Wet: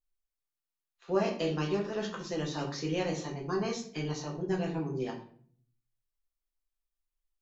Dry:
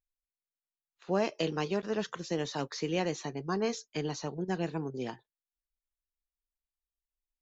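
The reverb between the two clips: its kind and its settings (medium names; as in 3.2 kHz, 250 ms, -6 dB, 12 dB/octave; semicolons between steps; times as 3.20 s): simulated room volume 56 m³, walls mixed, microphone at 0.82 m; trim -4.5 dB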